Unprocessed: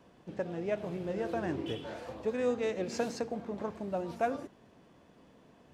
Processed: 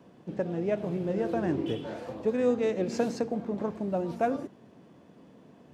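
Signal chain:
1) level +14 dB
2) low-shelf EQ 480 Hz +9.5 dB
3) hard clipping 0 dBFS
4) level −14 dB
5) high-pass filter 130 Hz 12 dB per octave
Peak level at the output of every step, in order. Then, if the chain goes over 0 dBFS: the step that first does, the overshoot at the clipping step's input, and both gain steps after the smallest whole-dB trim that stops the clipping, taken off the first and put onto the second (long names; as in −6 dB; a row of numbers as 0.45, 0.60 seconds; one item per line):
−3.5, −1.5, −1.5, −15.5, −14.5 dBFS
no step passes full scale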